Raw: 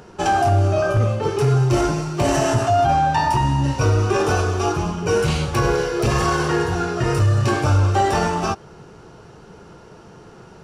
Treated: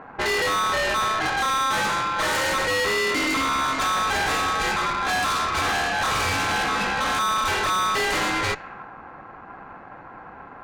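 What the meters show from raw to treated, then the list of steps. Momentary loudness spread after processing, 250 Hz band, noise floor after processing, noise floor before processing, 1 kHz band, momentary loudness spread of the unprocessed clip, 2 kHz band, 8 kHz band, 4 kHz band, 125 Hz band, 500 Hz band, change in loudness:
20 LU, -9.5 dB, -43 dBFS, -44 dBFS, -2.0 dB, 5 LU, +5.0 dB, +1.0 dB, +5.0 dB, -20.0 dB, -8.5 dB, -3.0 dB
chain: ring modulator 1200 Hz; low-pass opened by the level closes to 980 Hz, open at -17 dBFS; tube stage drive 30 dB, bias 0.4; gain +9 dB

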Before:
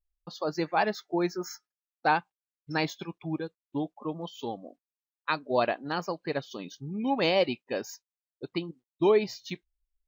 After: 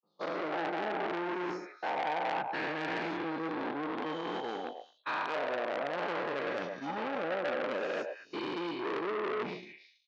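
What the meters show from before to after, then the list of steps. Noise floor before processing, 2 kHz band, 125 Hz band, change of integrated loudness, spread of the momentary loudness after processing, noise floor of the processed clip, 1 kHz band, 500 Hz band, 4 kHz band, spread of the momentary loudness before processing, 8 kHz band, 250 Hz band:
under -85 dBFS, -1.5 dB, -11.0 dB, -4.5 dB, 5 LU, -64 dBFS, -2.5 dB, -4.5 dB, -6.5 dB, 16 LU, under -10 dB, -5.5 dB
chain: spectral dilation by 0.48 s; gate -27 dBFS, range -36 dB; treble ducked by the level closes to 610 Hz, closed at -14 dBFS; HPF 220 Hz 12 dB/oct; high shelf 7700 Hz +11 dB; reverse; compressor 6:1, threshold -28 dBFS, peak gain reduction 12 dB; reverse; air absorption 230 m; delay with a stepping band-pass 0.109 s, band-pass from 700 Hz, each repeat 1.4 oct, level -4 dB; core saturation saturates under 2000 Hz

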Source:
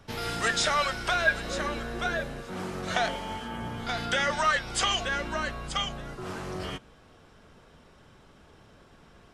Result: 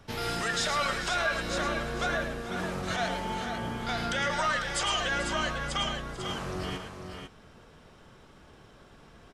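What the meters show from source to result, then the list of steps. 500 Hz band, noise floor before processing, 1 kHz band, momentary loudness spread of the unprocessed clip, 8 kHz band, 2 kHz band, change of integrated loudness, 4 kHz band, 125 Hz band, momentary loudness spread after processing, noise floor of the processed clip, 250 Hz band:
-0.5 dB, -56 dBFS, -1.0 dB, 12 LU, -1.5 dB, -2.0 dB, -1.5 dB, -1.0 dB, +1.0 dB, 8 LU, -55 dBFS, +1.0 dB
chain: limiter -20.5 dBFS, peak gain reduction 9.5 dB; tapped delay 0.109/0.442/0.497 s -8.5/-14.5/-7.5 dB

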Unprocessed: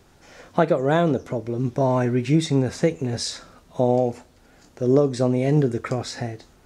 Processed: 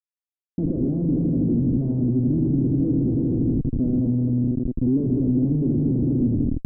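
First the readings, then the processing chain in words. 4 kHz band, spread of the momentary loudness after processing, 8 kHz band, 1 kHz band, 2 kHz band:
under -40 dB, 2 LU, under -40 dB, under -25 dB, under -40 dB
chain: low shelf 110 Hz +4 dB; on a send: multi-head echo 81 ms, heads all three, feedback 66%, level -11.5 dB; on the sum: Schmitt trigger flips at -26 dBFS; ladder low-pass 320 Hz, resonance 55%; gain +7 dB

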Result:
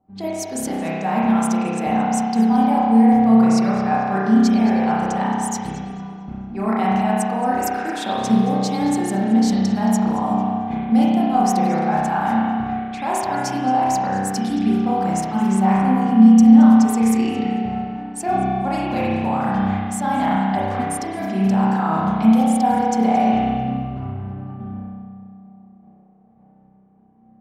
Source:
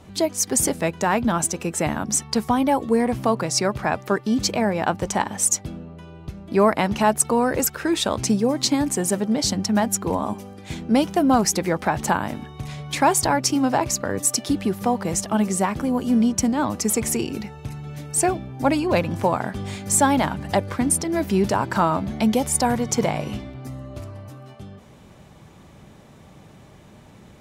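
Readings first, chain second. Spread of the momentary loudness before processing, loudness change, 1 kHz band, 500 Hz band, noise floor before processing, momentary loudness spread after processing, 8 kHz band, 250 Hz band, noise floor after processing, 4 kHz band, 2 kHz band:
15 LU, +3.5 dB, +5.0 dB, -2.5 dB, -47 dBFS, 13 LU, -9.5 dB, +7.0 dB, -51 dBFS, -6.0 dB, -1.0 dB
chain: low shelf 320 Hz -8 dB; gate -48 dBFS, range -19 dB; low-pass opened by the level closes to 750 Hz, open at -21.5 dBFS; reverse; compressor 4:1, threshold -30 dBFS, peak gain reduction 14 dB; reverse; small resonant body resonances 220/760 Hz, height 16 dB, ringing for 85 ms; on a send: darkening echo 0.222 s, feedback 49%, low-pass 4100 Hz, level -12.5 dB; on the sum: spring tank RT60 1.7 s, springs 31 ms, chirp 75 ms, DRR -6.5 dB

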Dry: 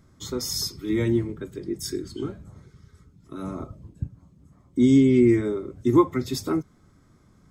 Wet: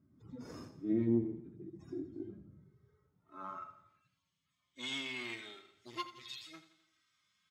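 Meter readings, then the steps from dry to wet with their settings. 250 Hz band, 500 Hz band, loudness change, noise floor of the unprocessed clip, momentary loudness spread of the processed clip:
-17.0 dB, -19.0 dB, -16.0 dB, -58 dBFS, 20 LU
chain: median-filter separation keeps harmonic; passive tone stack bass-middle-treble 5-5-5; added harmonics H 8 -23 dB, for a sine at -24.5 dBFS; in parallel at -10.5 dB: decimation with a swept rate 9×, swing 60% 0.59 Hz; on the sum: band-pass sweep 270 Hz -> 3100 Hz, 2.61–4.17; on a send: feedback echo 85 ms, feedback 52%, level -13.5 dB; on the sum: gain +13 dB

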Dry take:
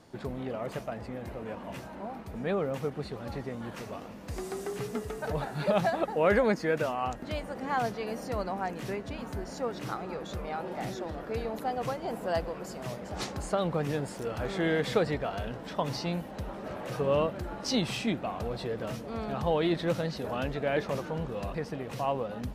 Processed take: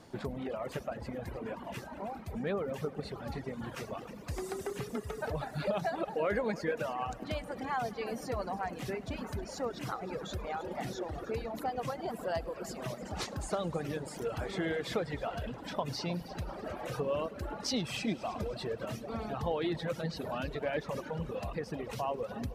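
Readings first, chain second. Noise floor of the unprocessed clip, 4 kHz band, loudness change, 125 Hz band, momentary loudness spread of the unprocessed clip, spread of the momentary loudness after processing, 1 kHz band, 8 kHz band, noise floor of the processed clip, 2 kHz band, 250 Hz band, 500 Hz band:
-43 dBFS, -3.0 dB, -4.5 dB, -4.0 dB, 11 LU, 7 LU, -4.0 dB, -1.5 dB, -47 dBFS, -4.5 dB, -4.5 dB, -5.0 dB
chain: compressor 2:1, threshold -36 dBFS, peak gain reduction 9.5 dB; on a send: multi-head echo 0.104 s, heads all three, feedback 60%, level -13.5 dB; on the sum: reverb removal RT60 2 s; gain +2 dB

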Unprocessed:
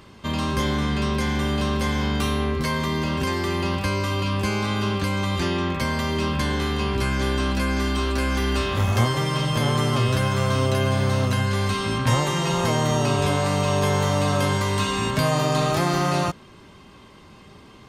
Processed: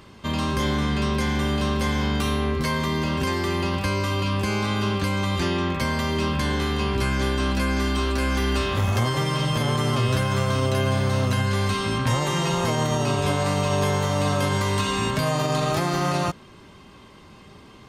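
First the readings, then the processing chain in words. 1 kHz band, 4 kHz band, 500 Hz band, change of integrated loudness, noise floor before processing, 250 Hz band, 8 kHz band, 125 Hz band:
-1.0 dB, -0.5 dB, -1.0 dB, -0.5 dB, -47 dBFS, -0.5 dB, -1.0 dB, -1.0 dB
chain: limiter -13 dBFS, peak gain reduction 4.5 dB

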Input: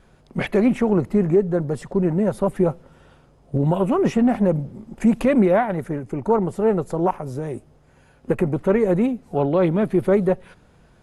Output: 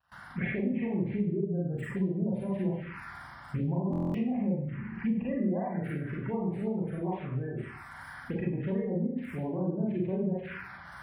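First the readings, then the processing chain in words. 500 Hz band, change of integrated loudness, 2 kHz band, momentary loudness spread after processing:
-15.5 dB, -11.5 dB, -8.0 dB, 11 LU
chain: switching spikes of -17 dBFS; recorder AGC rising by 23 dB/s; air absorption 430 m; on a send: thin delay 0.216 s, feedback 75%, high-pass 1700 Hz, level -9.5 dB; on the sum: spectral gate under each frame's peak -25 dB strong; HPF 52 Hz 24 dB/oct; Schroeder reverb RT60 0.56 s, combs from 32 ms, DRR -4.5 dB; compressor 2:1, threshold -20 dBFS, peak gain reduction 8 dB; envelope phaser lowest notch 360 Hz, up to 1400 Hz, full sweep at -16 dBFS; gate with hold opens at -34 dBFS; graphic EQ 250/500/2000/4000/8000 Hz -4/-8/+5/-12/+10 dB; stuck buffer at 3.91, samples 1024, times 9; gain -6 dB

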